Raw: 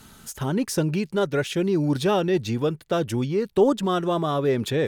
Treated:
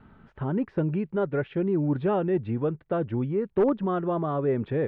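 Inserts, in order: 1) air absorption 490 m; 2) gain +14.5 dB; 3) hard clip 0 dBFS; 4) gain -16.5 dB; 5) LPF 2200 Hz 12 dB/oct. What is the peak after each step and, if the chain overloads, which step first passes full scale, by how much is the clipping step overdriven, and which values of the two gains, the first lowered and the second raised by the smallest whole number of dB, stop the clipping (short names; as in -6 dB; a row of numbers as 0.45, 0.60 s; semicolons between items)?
-9.5, +5.0, 0.0, -16.5, -16.0 dBFS; step 2, 5.0 dB; step 2 +9.5 dB, step 4 -11.5 dB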